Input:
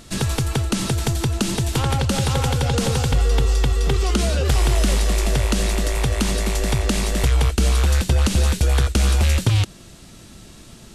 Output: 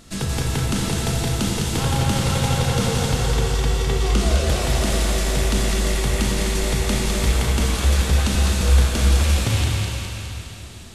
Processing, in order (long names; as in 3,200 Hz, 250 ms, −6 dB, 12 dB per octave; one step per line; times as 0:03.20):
feedback echo with a high-pass in the loop 206 ms, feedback 60%, high-pass 670 Hz, level −4 dB
dense smooth reverb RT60 3.1 s, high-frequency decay 0.9×, DRR −1.5 dB
level −4.5 dB